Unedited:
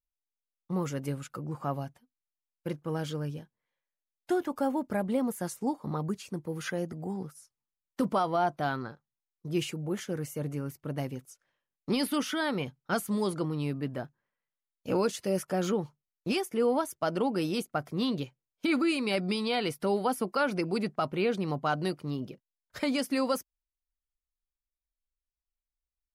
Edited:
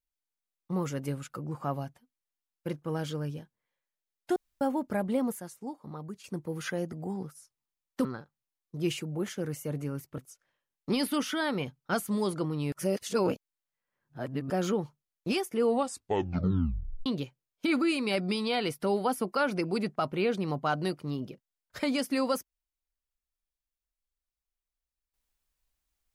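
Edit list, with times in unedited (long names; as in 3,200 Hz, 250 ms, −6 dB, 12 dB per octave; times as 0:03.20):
0:04.36–0:04.61: fill with room tone
0:05.40–0:06.24: clip gain −8.5 dB
0:08.05–0:08.76: remove
0:10.89–0:11.18: remove
0:13.72–0:15.50: reverse
0:16.62: tape stop 1.44 s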